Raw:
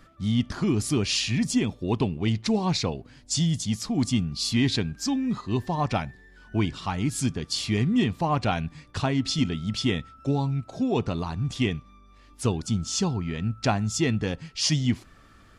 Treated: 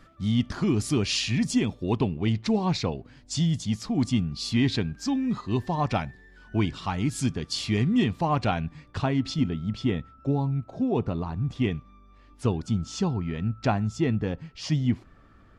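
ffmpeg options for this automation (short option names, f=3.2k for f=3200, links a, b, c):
-af "asetnsamples=n=441:p=0,asendcmd='1.96 lowpass f 3300;5.15 lowpass f 6100;8.51 lowpass f 2400;9.34 lowpass f 1100;11.64 lowpass f 2000;13.87 lowpass f 1200',lowpass=f=7.2k:p=1"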